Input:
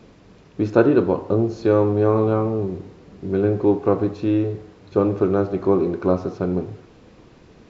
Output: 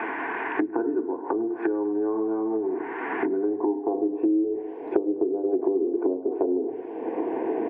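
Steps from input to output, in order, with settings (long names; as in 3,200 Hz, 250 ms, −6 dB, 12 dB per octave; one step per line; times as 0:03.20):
camcorder AGC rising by 12 dB per second
high-pass filter 170 Hz 24 dB per octave
mains-hum notches 50/100/150/200/250/300/350/400/450/500 Hz
treble cut that deepens with the level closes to 370 Hz, closed at −17.5 dBFS
phaser with its sweep stopped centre 850 Hz, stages 8
band-pass filter sweep 1,400 Hz → 540 Hz, 0:03.31–0:04.22
feedback echo with a band-pass in the loop 101 ms, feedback 84%, band-pass 1,300 Hz, level −22 dB
on a send at −13.5 dB: convolution reverb RT60 0.15 s, pre-delay 3 ms
on the sum: downsampling to 11,025 Hz
multiband upward and downward compressor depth 100%
level +8.5 dB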